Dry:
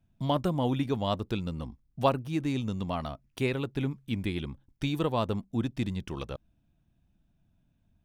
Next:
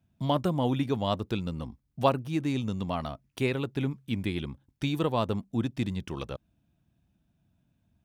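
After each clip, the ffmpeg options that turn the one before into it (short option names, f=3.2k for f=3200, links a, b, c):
-af "highpass=64,volume=1dB"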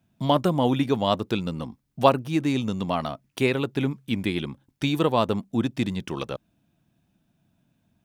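-af "equalizer=f=61:w=0.96:g=-13.5,volume=6.5dB"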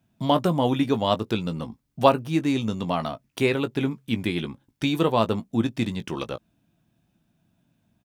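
-filter_complex "[0:a]asplit=2[a][b];[b]adelay=18,volume=-10.5dB[c];[a][c]amix=inputs=2:normalize=0"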